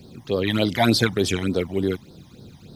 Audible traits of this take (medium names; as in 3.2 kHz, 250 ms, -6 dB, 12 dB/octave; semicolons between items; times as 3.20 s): a quantiser's noise floor 12-bit, dither triangular; phasing stages 12, 3.4 Hz, lowest notch 420–2500 Hz